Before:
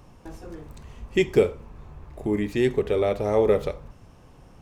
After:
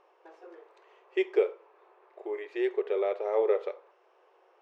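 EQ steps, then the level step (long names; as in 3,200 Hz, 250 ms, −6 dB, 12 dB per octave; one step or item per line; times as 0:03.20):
linear-phase brick-wall high-pass 340 Hz
low-pass filter 2,600 Hz 12 dB per octave
−5.5 dB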